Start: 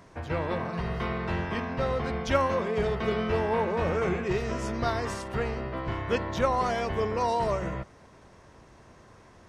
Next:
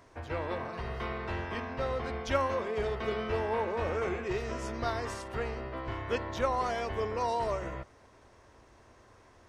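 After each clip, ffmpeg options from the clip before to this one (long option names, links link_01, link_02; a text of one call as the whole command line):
ffmpeg -i in.wav -af "equalizer=frequency=170:width=2.9:gain=-13,volume=-4dB" out.wav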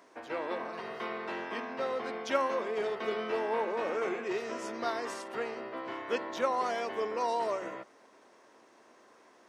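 ffmpeg -i in.wav -af "highpass=frequency=220:width=0.5412,highpass=frequency=220:width=1.3066" out.wav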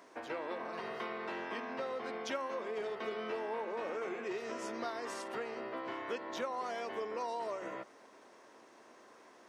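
ffmpeg -i in.wav -af "acompressor=threshold=-39dB:ratio=3,volume=1dB" out.wav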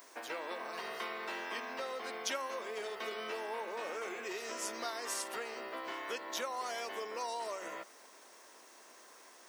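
ffmpeg -i in.wav -af "aemphasis=mode=production:type=riaa" out.wav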